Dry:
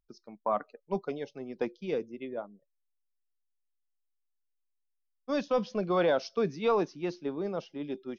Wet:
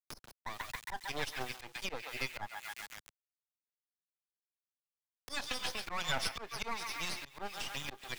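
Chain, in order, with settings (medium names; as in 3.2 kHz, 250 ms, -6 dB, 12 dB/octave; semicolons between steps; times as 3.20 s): peaking EQ 830 Hz +11 dB 0.4 oct; LFO high-pass sine 4 Hz 830–4800 Hz; peak limiter -25.5 dBFS, peak gain reduction 14.5 dB; half-wave rectifier; band-passed feedback delay 136 ms, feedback 67%, band-pass 2.6 kHz, level -10 dB; bit crusher 11-bit; slow attack 378 ms; three bands compressed up and down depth 70%; trim +14.5 dB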